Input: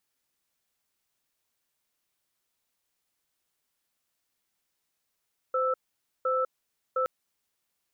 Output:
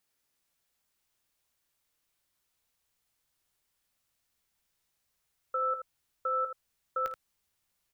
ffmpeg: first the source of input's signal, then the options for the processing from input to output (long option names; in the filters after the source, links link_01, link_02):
-f lavfi -i "aevalsrc='0.0473*(sin(2*PI*516*t)+sin(2*PI*1320*t))*clip(min(mod(t,0.71),0.2-mod(t,0.71))/0.005,0,1)':duration=1.52:sample_rate=44100"
-filter_complex "[0:a]asubboost=boost=2.5:cutoff=150,acrossover=split=740[link_01][link_02];[link_01]alimiter=level_in=13dB:limit=-24dB:level=0:latency=1,volume=-13dB[link_03];[link_03][link_02]amix=inputs=2:normalize=0,aecho=1:1:17|53|79:0.224|0.133|0.335"